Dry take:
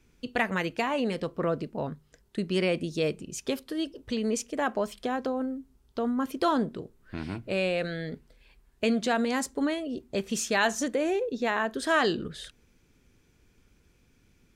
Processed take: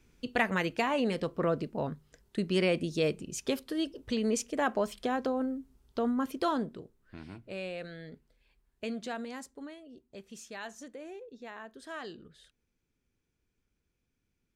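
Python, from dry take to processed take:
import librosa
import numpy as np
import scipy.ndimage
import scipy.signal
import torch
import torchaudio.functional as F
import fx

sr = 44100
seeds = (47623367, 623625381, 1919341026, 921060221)

y = fx.gain(x, sr, db=fx.line((6.06, -1.0), (7.23, -11.0), (9.1, -11.0), (9.72, -17.5)))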